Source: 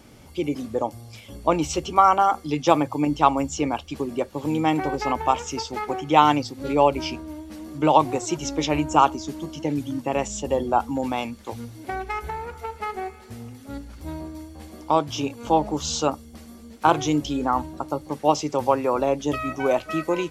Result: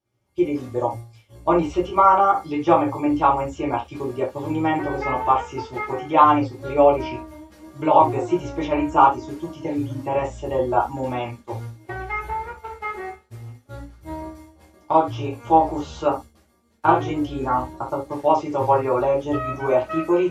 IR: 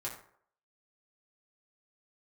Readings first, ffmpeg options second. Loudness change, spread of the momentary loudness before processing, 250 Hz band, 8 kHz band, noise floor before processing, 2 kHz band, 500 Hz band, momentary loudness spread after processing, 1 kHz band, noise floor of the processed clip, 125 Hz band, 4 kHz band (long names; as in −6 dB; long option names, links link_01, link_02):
+2.0 dB, 17 LU, +1.0 dB, below −10 dB, −46 dBFS, +0.5 dB, +3.0 dB, 17 LU, +2.5 dB, −58 dBFS, +1.5 dB, −8.0 dB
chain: -filter_complex "[0:a]agate=range=-33dB:threshold=-32dB:ratio=3:detection=peak,acrossover=split=2700[link_01][link_02];[link_02]acompressor=threshold=-50dB:ratio=4:attack=1:release=60[link_03];[link_01][link_03]amix=inputs=2:normalize=0[link_04];[1:a]atrim=start_sample=2205,atrim=end_sample=3528[link_05];[link_04][link_05]afir=irnorm=-1:irlink=0,volume=1.5dB"